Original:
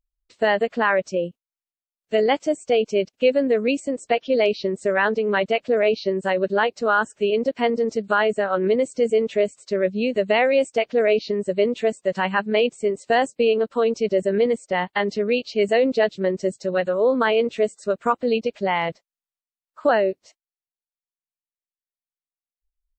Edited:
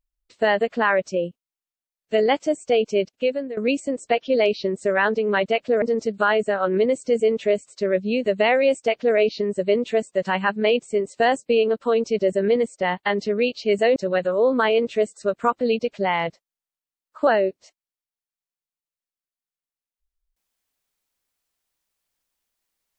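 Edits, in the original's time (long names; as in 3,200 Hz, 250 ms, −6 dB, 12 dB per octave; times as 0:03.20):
0:03.02–0:03.57: fade out, to −16 dB
0:05.82–0:07.72: remove
0:15.86–0:16.58: remove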